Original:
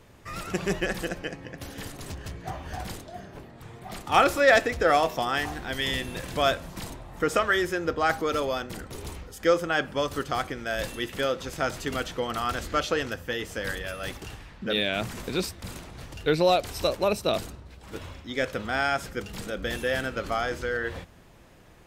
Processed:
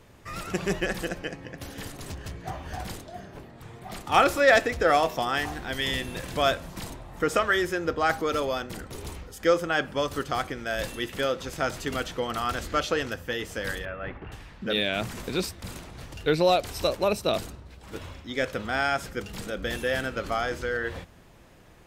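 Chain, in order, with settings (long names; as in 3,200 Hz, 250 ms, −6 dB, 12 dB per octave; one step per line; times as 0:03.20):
0:13.85–0:14.32: low-pass filter 2,200 Hz 24 dB per octave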